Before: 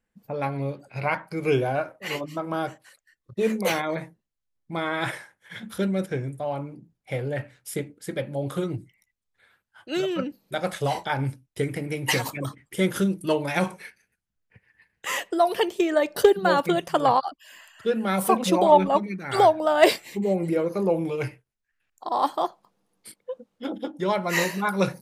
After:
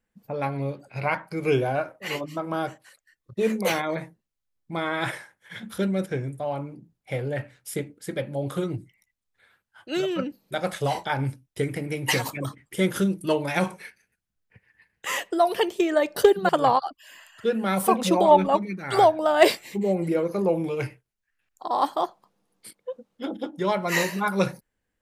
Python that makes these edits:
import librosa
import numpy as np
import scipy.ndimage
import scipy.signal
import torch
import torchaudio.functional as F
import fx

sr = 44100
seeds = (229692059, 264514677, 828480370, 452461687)

y = fx.edit(x, sr, fx.cut(start_s=16.49, length_s=0.41), tone=tone)